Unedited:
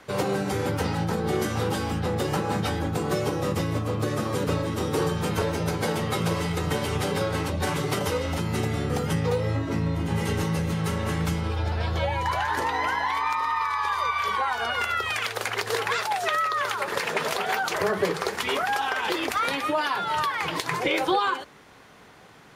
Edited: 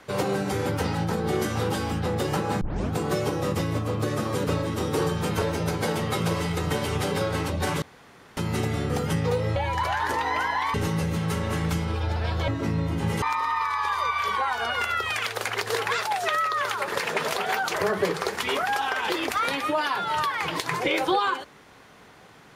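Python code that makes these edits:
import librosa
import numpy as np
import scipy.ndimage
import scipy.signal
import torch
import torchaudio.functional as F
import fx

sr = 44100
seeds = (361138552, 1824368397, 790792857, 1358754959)

y = fx.edit(x, sr, fx.tape_start(start_s=2.61, length_s=0.31),
    fx.room_tone_fill(start_s=7.82, length_s=0.55),
    fx.swap(start_s=9.56, length_s=0.74, other_s=12.04, other_length_s=1.18), tone=tone)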